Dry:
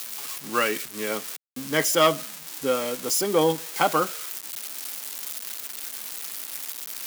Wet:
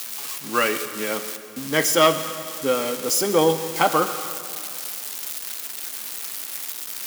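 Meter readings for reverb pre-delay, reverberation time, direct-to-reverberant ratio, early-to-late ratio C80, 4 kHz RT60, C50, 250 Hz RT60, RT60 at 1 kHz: 7 ms, 2.4 s, 9.5 dB, 11.5 dB, 2.2 s, 10.5 dB, 2.4 s, 2.3 s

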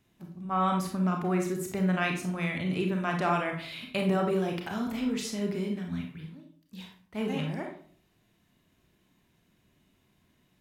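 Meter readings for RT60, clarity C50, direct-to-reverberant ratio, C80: 0.50 s, 5.5 dB, 2.0 dB, 10.5 dB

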